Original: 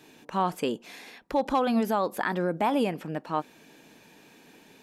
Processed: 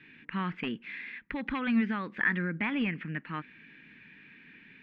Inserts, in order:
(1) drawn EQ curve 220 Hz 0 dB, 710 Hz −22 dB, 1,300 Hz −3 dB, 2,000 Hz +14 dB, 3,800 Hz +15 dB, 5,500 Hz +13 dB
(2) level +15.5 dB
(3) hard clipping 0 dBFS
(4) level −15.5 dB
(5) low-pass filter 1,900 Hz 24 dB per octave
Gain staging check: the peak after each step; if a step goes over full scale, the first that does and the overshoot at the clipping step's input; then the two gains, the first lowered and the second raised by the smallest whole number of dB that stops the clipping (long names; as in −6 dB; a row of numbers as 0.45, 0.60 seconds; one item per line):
−7.5, +8.0, 0.0, −15.5, −16.0 dBFS
step 2, 8.0 dB
step 2 +7.5 dB, step 4 −7.5 dB